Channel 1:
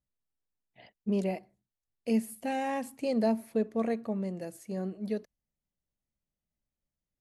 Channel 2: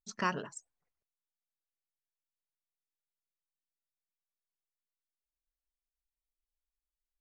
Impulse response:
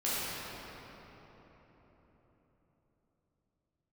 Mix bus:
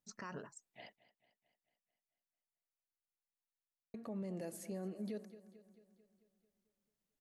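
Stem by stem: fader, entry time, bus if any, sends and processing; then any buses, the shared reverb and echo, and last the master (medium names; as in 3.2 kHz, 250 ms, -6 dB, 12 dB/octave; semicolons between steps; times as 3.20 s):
+1.0 dB, 0.00 s, muted 0.96–3.94 s, no send, echo send -18.5 dB, high-pass 160 Hz 12 dB/octave; compression, threshold -37 dBFS, peak gain reduction 13.5 dB
-6.5 dB, 0.00 s, no send, no echo send, peaking EQ 3.3 kHz -14 dB 0.38 oct; auto duck -6 dB, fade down 0.40 s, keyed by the first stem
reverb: none
echo: feedback delay 221 ms, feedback 57%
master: peak limiter -35.5 dBFS, peak gain reduction 11.5 dB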